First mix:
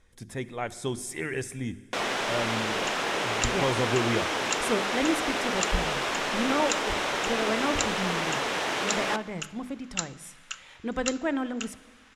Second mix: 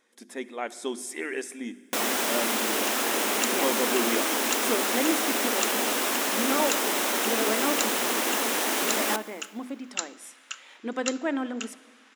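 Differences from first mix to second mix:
first sound: remove band-pass filter 360–4,400 Hz
master: add linear-phase brick-wall high-pass 210 Hz

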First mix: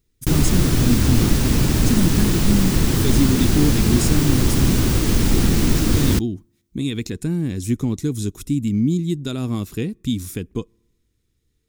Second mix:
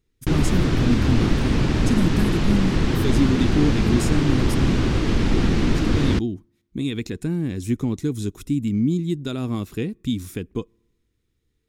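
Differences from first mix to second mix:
background: add low-pass filter 5,000 Hz 12 dB per octave
master: add bass and treble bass −3 dB, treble −7 dB

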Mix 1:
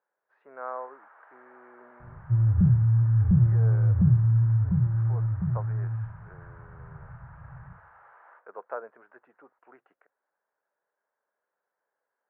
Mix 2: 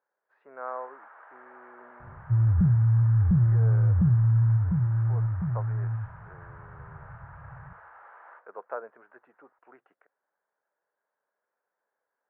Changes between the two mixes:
first sound +4.0 dB
second sound: send −9.0 dB

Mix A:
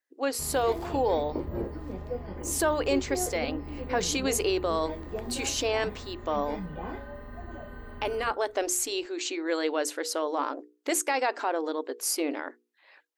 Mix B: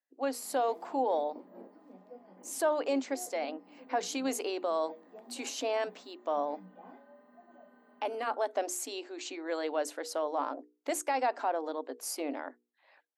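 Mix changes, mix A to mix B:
background −10.5 dB
master: add Chebyshev high-pass with heavy ripple 180 Hz, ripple 9 dB

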